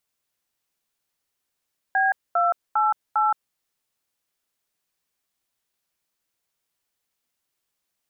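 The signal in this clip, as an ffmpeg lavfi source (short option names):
-f lavfi -i "aevalsrc='0.1*clip(min(mod(t,0.402),0.171-mod(t,0.402))/0.002,0,1)*(eq(floor(t/0.402),0)*(sin(2*PI*770*mod(t,0.402))+sin(2*PI*1633*mod(t,0.402)))+eq(floor(t/0.402),1)*(sin(2*PI*697*mod(t,0.402))+sin(2*PI*1336*mod(t,0.402)))+eq(floor(t/0.402),2)*(sin(2*PI*852*mod(t,0.402))+sin(2*PI*1336*mod(t,0.402)))+eq(floor(t/0.402),3)*(sin(2*PI*852*mod(t,0.402))+sin(2*PI*1336*mod(t,0.402))))':d=1.608:s=44100"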